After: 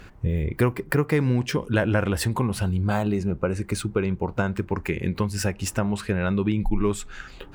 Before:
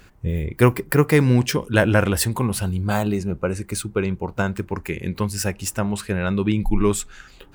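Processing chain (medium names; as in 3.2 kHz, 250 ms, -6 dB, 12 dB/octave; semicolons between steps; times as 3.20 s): treble shelf 5.6 kHz -11 dB; compression 2.5:1, threshold -28 dBFS, peak gain reduction 12.5 dB; trim +5 dB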